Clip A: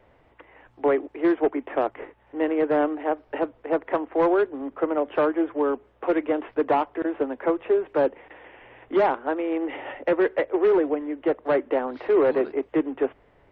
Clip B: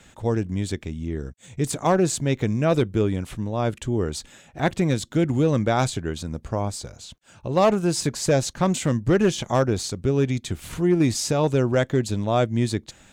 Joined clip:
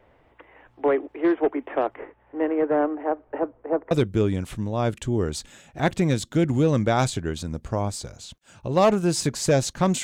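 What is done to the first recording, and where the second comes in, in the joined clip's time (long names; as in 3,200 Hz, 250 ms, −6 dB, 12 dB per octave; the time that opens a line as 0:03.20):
clip A
0:01.96–0:03.91: low-pass filter 2,600 Hz → 1,100 Hz
0:03.91: continue with clip B from 0:02.71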